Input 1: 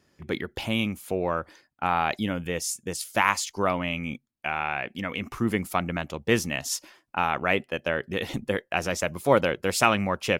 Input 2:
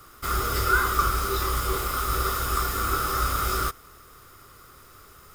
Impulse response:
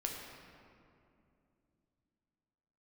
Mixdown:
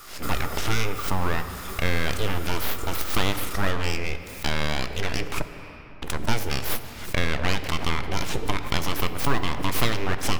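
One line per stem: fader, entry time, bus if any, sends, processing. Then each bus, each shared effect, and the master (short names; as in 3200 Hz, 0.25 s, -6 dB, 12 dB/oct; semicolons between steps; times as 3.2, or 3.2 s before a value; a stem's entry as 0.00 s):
+3.0 dB, 0.00 s, muted 5.42–6.02, send -5 dB, compressor 3:1, threshold -26 dBFS, peak gain reduction 9.5 dB; full-wave rectifier; backwards sustainer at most 120 dB/s
-4.0 dB, 0.00 s, no send, auto duck -10 dB, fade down 0.85 s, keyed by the first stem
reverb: on, RT60 2.6 s, pre-delay 7 ms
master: mismatched tape noise reduction encoder only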